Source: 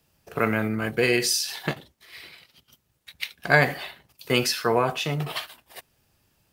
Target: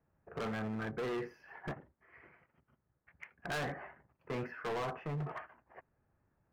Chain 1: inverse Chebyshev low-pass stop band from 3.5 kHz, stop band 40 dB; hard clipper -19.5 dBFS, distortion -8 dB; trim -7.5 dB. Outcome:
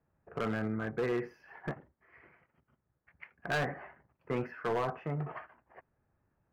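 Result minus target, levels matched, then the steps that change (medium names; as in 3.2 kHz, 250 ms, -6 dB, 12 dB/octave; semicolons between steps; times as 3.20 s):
hard clipper: distortion -5 dB
change: hard clipper -27 dBFS, distortion -4 dB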